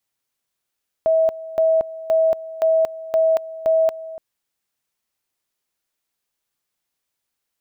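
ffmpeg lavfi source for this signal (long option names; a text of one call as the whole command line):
ffmpeg -f lavfi -i "aevalsrc='pow(10,(-13-17*gte(mod(t,0.52),0.23))/20)*sin(2*PI*646*t)':duration=3.12:sample_rate=44100" out.wav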